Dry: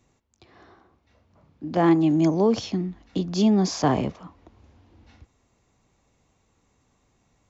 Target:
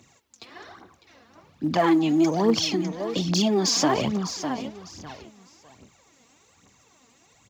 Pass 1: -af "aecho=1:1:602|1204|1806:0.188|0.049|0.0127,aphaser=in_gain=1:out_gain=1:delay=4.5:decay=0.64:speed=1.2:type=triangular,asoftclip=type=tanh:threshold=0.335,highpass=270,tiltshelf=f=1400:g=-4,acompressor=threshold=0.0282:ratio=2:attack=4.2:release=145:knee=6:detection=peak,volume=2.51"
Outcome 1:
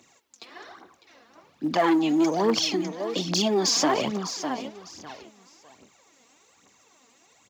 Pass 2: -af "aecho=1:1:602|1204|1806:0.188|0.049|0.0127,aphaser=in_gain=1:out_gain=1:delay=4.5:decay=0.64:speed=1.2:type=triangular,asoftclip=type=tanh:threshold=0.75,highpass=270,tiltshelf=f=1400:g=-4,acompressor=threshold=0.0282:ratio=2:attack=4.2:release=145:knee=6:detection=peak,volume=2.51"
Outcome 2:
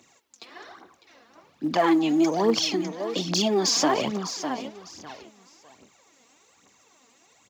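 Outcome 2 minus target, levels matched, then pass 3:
125 Hz band -5.5 dB
-af "aecho=1:1:602|1204|1806:0.188|0.049|0.0127,aphaser=in_gain=1:out_gain=1:delay=4.5:decay=0.64:speed=1.2:type=triangular,asoftclip=type=tanh:threshold=0.75,highpass=120,tiltshelf=f=1400:g=-4,acompressor=threshold=0.0282:ratio=2:attack=4.2:release=145:knee=6:detection=peak,volume=2.51"

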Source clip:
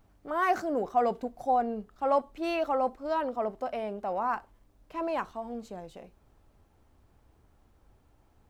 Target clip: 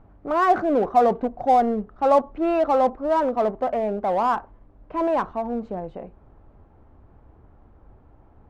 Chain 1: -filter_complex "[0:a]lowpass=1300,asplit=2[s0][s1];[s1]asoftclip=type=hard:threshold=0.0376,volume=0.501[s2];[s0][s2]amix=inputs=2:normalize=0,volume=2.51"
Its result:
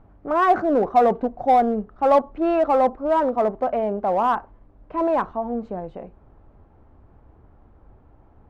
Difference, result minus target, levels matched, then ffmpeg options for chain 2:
hard clipper: distortion -4 dB
-filter_complex "[0:a]lowpass=1300,asplit=2[s0][s1];[s1]asoftclip=type=hard:threshold=0.0168,volume=0.501[s2];[s0][s2]amix=inputs=2:normalize=0,volume=2.51"

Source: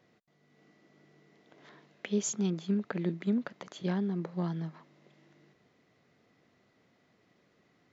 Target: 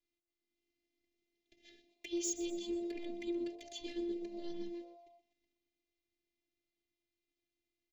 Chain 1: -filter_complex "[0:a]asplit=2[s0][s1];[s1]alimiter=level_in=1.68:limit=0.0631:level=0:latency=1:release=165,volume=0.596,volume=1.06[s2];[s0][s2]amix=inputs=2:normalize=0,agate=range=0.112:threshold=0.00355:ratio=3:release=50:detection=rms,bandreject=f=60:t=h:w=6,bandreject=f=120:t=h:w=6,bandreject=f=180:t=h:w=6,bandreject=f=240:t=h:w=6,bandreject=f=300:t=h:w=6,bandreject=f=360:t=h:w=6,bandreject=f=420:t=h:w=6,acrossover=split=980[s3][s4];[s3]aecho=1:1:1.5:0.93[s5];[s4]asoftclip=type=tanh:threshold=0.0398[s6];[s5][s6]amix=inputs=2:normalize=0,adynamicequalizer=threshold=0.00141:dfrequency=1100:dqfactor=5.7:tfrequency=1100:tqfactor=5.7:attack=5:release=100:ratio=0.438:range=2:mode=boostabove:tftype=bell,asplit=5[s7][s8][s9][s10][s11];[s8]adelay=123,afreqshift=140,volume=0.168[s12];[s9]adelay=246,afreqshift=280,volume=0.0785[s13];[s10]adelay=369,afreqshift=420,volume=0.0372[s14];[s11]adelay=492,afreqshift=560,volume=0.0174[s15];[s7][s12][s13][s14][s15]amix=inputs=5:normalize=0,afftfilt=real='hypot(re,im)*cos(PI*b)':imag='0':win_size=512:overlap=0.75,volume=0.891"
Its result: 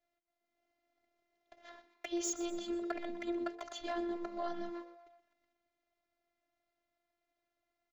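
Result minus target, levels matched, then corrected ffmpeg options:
1 kHz band +13.0 dB
-filter_complex "[0:a]asplit=2[s0][s1];[s1]alimiter=level_in=1.68:limit=0.0631:level=0:latency=1:release=165,volume=0.596,volume=1.06[s2];[s0][s2]amix=inputs=2:normalize=0,agate=range=0.112:threshold=0.00355:ratio=3:release=50:detection=rms,bandreject=f=60:t=h:w=6,bandreject=f=120:t=h:w=6,bandreject=f=180:t=h:w=6,bandreject=f=240:t=h:w=6,bandreject=f=300:t=h:w=6,bandreject=f=360:t=h:w=6,bandreject=f=420:t=h:w=6,acrossover=split=980[s3][s4];[s3]aecho=1:1:1.5:0.93[s5];[s4]asoftclip=type=tanh:threshold=0.0398[s6];[s5][s6]amix=inputs=2:normalize=0,adynamicequalizer=threshold=0.00141:dfrequency=1100:dqfactor=5.7:tfrequency=1100:tqfactor=5.7:attack=5:release=100:ratio=0.438:range=2:mode=boostabove:tftype=bell,asuperstop=centerf=1000:order=8:qfactor=0.57,asplit=5[s7][s8][s9][s10][s11];[s8]adelay=123,afreqshift=140,volume=0.168[s12];[s9]adelay=246,afreqshift=280,volume=0.0785[s13];[s10]adelay=369,afreqshift=420,volume=0.0372[s14];[s11]adelay=492,afreqshift=560,volume=0.0174[s15];[s7][s12][s13][s14][s15]amix=inputs=5:normalize=0,afftfilt=real='hypot(re,im)*cos(PI*b)':imag='0':win_size=512:overlap=0.75,volume=0.891"

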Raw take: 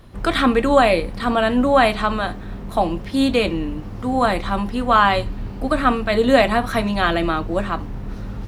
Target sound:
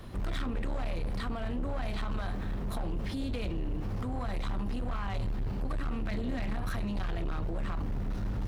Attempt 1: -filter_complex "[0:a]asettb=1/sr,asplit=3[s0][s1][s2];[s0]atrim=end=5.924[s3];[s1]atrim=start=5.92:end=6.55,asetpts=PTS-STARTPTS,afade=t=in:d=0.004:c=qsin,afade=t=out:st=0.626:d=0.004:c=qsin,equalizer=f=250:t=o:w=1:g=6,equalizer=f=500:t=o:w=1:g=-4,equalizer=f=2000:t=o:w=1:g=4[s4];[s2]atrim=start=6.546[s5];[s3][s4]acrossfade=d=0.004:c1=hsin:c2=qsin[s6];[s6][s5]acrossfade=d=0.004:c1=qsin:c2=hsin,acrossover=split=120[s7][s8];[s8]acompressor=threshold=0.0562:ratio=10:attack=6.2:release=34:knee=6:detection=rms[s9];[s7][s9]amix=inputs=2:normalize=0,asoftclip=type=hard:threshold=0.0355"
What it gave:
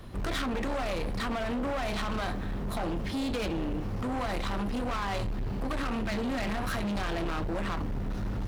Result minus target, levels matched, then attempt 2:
compression: peak gain reduction -10.5 dB
-filter_complex "[0:a]asettb=1/sr,asplit=3[s0][s1][s2];[s0]atrim=end=5.924[s3];[s1]atrim=start=5.92:end=6.55,asetpts=PTS-STARTPTS,afade=t=in:d=0.004:c=qsin,afade=t=out:st=0.626:d=0.004:c=qsin,equalizer=f=250:t=o:w=1:g=6,equalizer=f=500:t=o:w=1:g=-4,equalizer=f=2000:t=o:w=1:g=4[s4];[s2]atrim=start=6.546[s5];[s3][s4]acrossfade=d=0.004:c1=hsin:c2=qsin[s6];[s6][s5]acrossfade=d=0.004:c1=qsin:c2=hsin,acrossover=split=120[s7][s8];[s8]acompressor=threshold=0.015:ratio=10:attack=6.2:release=34:knee=6:detection=rms[s9];[s7][s9]amix=inputs=2:normalize=0,asoftclip=type=hard:threshold=0.0355"

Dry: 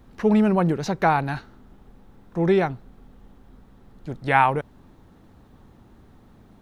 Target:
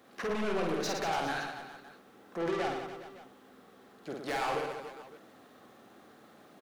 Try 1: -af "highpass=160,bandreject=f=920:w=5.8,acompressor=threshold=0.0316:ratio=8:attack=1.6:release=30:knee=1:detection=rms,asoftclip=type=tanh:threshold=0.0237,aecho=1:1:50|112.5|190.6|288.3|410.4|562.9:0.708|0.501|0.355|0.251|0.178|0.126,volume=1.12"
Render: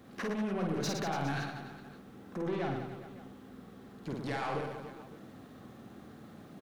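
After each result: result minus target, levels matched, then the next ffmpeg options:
125 Hz band +9.5 dB; compression: peak gain reduction +8.5 dB
-af "highpass=420,bandreject=f=920:w=5.8,acompressor=threshold=0.0316:ratio=8:attack=1.6:release=30:knee=1:detection=rms,asoftclip=type=tanh:threshold=0.0237,aecho=1:1:50|112.5|190.6|288.3|410.4|562.9:0.708|0.501|0.355|0.251|0.178|0.126,volume=1.12"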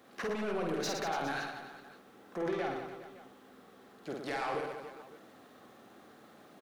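compression: peak gain reduction +8 dB
-af "highpass=420,bandreject=f=920:w=5.8,acompressor=threshold=0.0891:ratio=8:attack=1.6:release=30:knee=1:detection=rms,asoftclip=type=tanh:threshold=0.0237,aecho=1:1:50|112.5|190.6|288.3|410.4|562.9:0.708|0.501|0.355|0.251|0.178|0.126,volume=1.12"

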